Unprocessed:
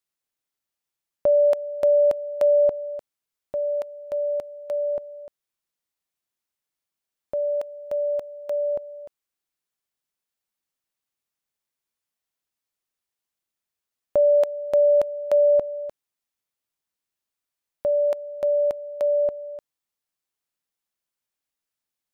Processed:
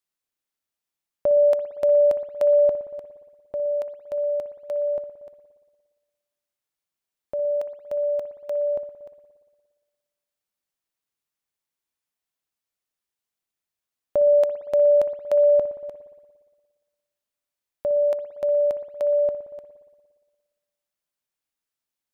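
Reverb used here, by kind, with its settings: spring tank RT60 1.5 s, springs 58 ms, chirp 55 ms, DRR 9.5 dB; trim -1.5 dB

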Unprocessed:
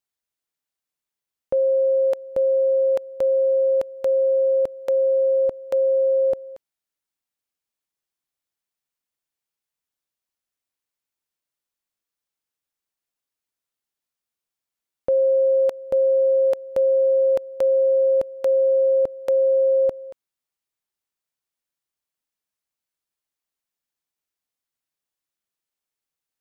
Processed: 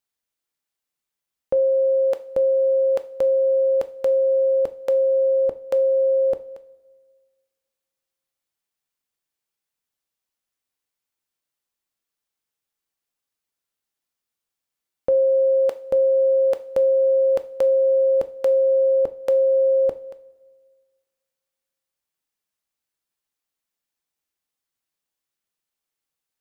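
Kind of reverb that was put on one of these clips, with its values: two-slope reverb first 0.36 s, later 1.8 s, from -18 dB, DRR 10 dB; trim +1.5 dB

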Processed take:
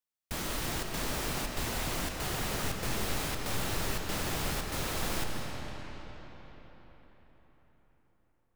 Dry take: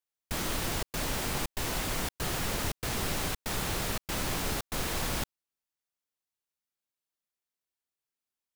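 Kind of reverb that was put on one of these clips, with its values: algorithmic reverb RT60 4.8 s, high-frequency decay 0.7×, pre-delay 105 ms, DRR 2 dB; trim -3 dB

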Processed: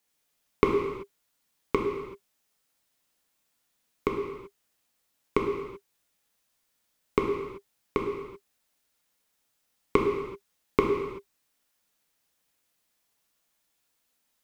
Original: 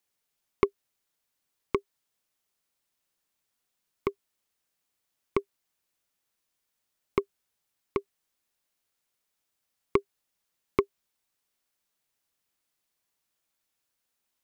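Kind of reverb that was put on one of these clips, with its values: gated-style reverb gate 410 ms falling, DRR -0.5 dB; trim +2.5 dB

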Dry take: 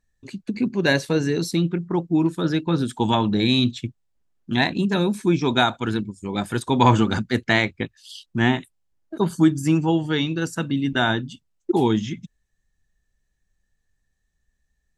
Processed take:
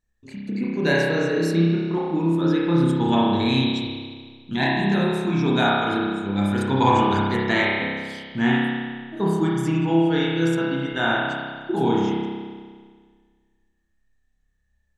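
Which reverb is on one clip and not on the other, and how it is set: spring tank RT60 1.7 s, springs 30 ms, chirp 60 ms, DRR -5.5 dB; trim -5.5 dB

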